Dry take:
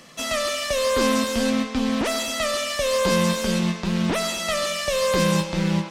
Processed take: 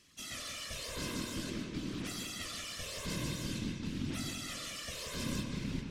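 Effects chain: passive tone stack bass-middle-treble 6-0-2; whisperiser; darkening echo 0.179 s, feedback 47%, low-pass 2300 Hz, level -4 dB; gain +1 dB

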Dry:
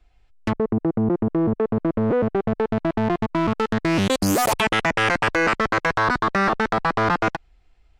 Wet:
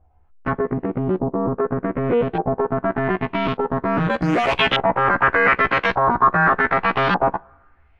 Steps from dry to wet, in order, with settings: short-time reversal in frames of 33 ms; two-slope reverb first 0.2 s, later 1.5 s, from -18 dB, DRR 18 dB; LFO low-pass saw up 0.84 Hz 770–3600 Hz; gain +3.5 dB

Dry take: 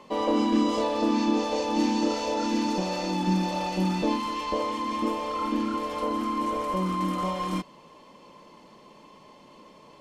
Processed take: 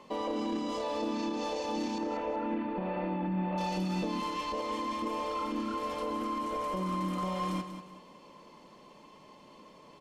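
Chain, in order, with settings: 1.98–3.58 inverse Chebyshev low-pass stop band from 5900 Hz, stop band 50 dB; limiter -22.5 dBFS, peak gain reduction 10 dB; feedback echo 0.189 s, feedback 33%, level -10 dB; gain -3.5 dB

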